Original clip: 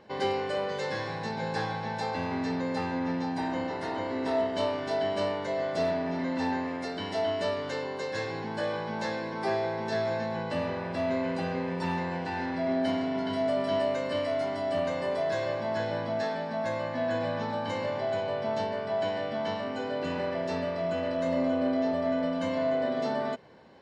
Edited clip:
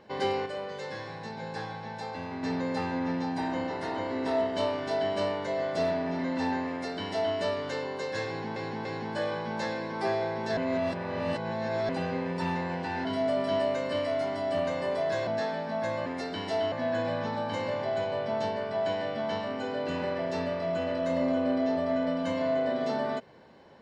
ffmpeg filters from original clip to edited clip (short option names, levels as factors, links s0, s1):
-filter_complex "[0:a]asplit=11[s0][s1][s2][s3][s4][s5][s6][s7][s8][s9][s10];[s0]atrim=end=0.462[s11];[s1]atrim=start=0.458:end=2.432,asetpts=PTS-STARTPTS,volume=0.531[s12];[s2]atrim=start=2.428:end=8.562[s13];[s3]atrim=start=8.268:end=8.562[s14];[s4]atrim=start=8.268:end=9.992[s15];[s5]atrim=start=9.988:end=11.312,asetpts=PTS-STARTPTS,areverse[s16];[s6]atrim=start=11.308:end=12.472[s17];[s7]atrim=start=13.248:end=15.472[s18];[s8]atrim=start=16.088:end=16.882[s19];[s9]atrim=start=6.698:end=7.362[s20];[s10]atrim=start=16.878[s21];[s11][s12]acrossfade=d=0.004:c1=hsin:c2=hsin[s22];[s22][s13]acrossfade=d=0.004:c1=hsin:c2=hsin[s23];[s23][s14]acrossfade=d=0.004:c1=hsin:c2=hsin[s24];[s24][s15]acrossfade=d=0.004:c1=hsin:c2=hsin[s25];[s25][s16]acrossfade=d=0.004:c1=hsin:c2=hsin[s26];[s26][s17]acrossfade=d=0.004:c1=hsin:c2=hsin[s27];[s27][s18]acrossfade=d=0.004:c1=hsin:c2=hsin[s28];[s28][s19]acrossfade=d=0.004:c1=hsin:c2=hsin[s29];[s29][s20]acrossfade=d=0.004:c1=hsin:c2=hsin[s30];[s30][s21]acrossfade=d=0.004:c1=hsin:c2=hsin"